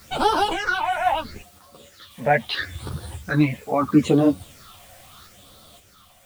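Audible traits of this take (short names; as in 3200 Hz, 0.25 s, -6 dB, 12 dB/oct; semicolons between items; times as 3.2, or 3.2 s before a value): phasing stages 6, 0.76 Hz, lowest notch 320–2100 Hz; a quantiser's noise floor 10-bit, dither triangular; random-step tremolo 1.9 Hz; a shimmering, thickened sound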